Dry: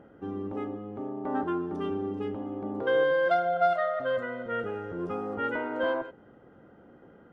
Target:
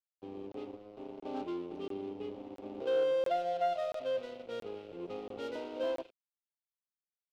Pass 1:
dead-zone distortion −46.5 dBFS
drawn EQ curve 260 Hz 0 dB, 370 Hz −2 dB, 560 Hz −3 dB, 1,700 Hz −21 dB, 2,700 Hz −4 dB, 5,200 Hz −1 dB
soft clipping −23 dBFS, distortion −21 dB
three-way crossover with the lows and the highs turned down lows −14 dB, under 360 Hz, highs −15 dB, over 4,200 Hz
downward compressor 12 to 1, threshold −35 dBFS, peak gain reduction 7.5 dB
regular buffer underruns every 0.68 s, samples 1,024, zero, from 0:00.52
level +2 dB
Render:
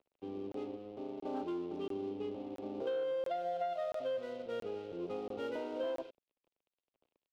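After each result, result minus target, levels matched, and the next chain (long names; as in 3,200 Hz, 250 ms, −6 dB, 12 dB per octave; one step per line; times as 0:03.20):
downward compressor: peak gain reduction +7.5 dB; dead-zone distortion: distortion −6 dB
dead-zone distortion −46.5 dBFS
drawn EQ curve 260 Hz 0 dB, 370 Hz −2 dB, 560 Hz −3 dB, 1,700 Hz −21 dB, 2,700 Hz −4 dB, 5,200 Hz −1 dB
soft clipping −23 dBFS, distortion −21 dB
three-way crossover with the lows and the highs turned down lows −14 dB, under 360 Hz, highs −15 dB, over 4,200 Hz
regular buffer underruns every 0.68 s, samples 1,024, zero, from 0:00.52
level +2 dB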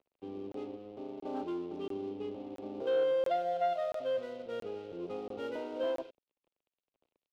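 dead-zone distortion: distortion −6 dB
dead-zone distortion −40 dBFS
drawn EQ curve 260 Hz 0 dB, 370 Hz −2 dB, 560 Hz −3 dB, 1,700 Hz −21 dB, 2,700 Hz −4 dB, 5,200 Hz −1 dB
soft clipping −23 dBFS, distortion −22 dB
three-way crossover with the lows and the highs turned down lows −14 dB, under 360 Hz, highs −15 dB, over 4,200 Hz
regular buffer underruns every 0.68 s, samples 1,024, zero, from 0:00.52
level +2 dB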